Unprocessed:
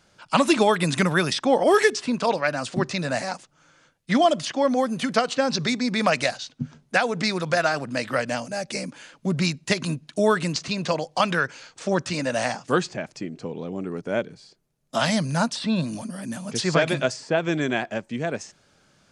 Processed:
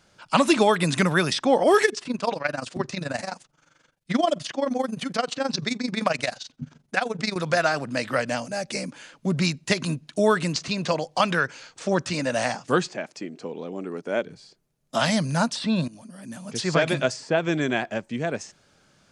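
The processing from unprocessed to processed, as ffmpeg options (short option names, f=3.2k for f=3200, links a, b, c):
-filter_complex "[0:a]asettb=1/sr,asplit=3[a][b][c];[a]atrim=end=1.854[d];[b]atrim=start=1.85:end=7.36,asetpts=PTS-STARTPTS,afade=t=in:d=0.004:c=qsin,afade=t=out:st=5.506:d=0.004:c=qsin,tremolo=f=23:d=0.824[e];[c]atrim=start=7.356[f];[d][e]acrossfade=d=0.004:c1=hsin:c2=qsin[g];[g][f]acrossfade=d=0.004:c1=qsin:c2=hsin,asettb=1/sr,asplit=3[h][i][j];[h]atrim=end=12.884[k];[i]atrim=start=12.88:end=14.26,asetpts=PTS-STARTPTS,afade=t=in:d=0.004:c=qsin,afade=t=out:st=1.376:d=0.004:c=qsin,highpass=240[l];[j]atrim=start=14.256[m];[k][l]acrossfade=d=0.004:c1=hsin:c2=qsin[n];[n][m]acrossfade=d=0.004:c1=qsin:c2=hsin,asplit=2[o][p];[o]atrim=end=15.88,asetpts=PTS-STARTPTS,afade=t=out:st=15.876:d=0.004:c=hsin:silence=0.141254[q];[p]atrim=start=15.88,asetpts=PTS-STARTPTS,afade=t=in:d=1.03:silence=0.141254[r];[q][r]concat=n=2:v=0:a=1"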